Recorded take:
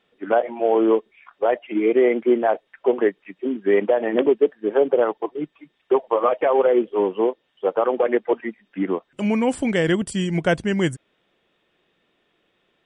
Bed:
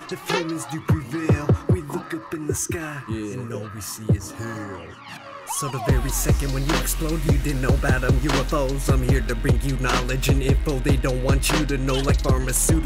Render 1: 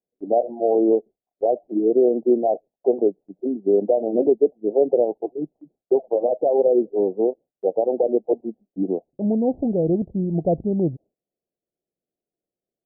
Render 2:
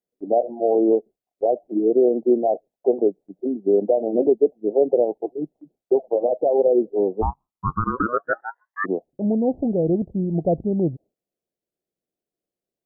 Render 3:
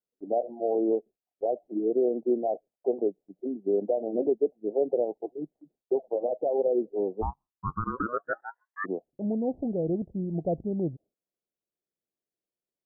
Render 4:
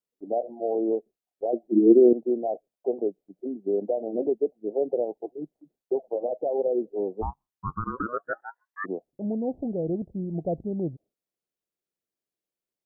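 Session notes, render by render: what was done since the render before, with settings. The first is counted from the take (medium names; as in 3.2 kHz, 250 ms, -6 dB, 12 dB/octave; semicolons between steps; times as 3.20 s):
steep low-pass 760 Hz 72 dB/octave; gate with hold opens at -51 dBFS
7.21–8.84 s: ring modulator 420 Hz -> 1.5 kHz
trim -8 dB
1.53–2.13 s: small resonant body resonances 230/340 Hz, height 17 dB, ringing for 90 ms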